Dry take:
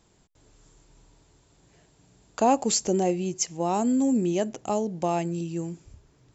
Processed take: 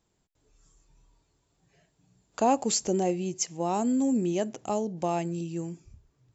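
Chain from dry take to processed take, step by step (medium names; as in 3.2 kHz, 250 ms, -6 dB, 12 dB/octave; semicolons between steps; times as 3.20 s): spectral noise reduction 9 dB; trim -2.5 dB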